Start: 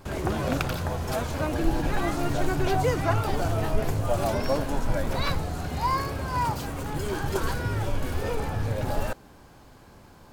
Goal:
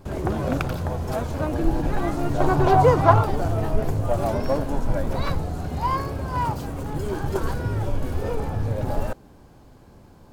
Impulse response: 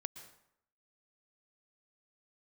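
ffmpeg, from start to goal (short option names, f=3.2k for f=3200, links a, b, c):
-filter_complex "[0:a]asplit=2[a][b];[b]adynamicsmooth=sensitivity=1:basefreq=940,volume=2dB[c];[a][c]amix=inputs=2:normalize=0,asettb=1/sr,asplit=3[d][e][f];[d]atrim=end=2.404[g];[e]atrim=start=2.4:end=3.25,asetpts=PTS-STARTPTS,afade=t=in:d=0.004:c=qsin,afade=t=out:st=0.846:d=0.004:c=qsin,equalizer=f=125:t=o:w=1:g=5,equalizer=f=500:t=o:w=1:g=4,equalizer=f=1k:t=o:w=1:g=11,equalizer=f=4k:t=o:w=1:g=4[h];[f]atrim=start=3.246[i];[g][h]acrossfade=d=0.004:c1=hsin:c2=qsin[j];[j][i]acrossfade=d=0.004:c1=qsin:c2=hsin,volume=-4dB"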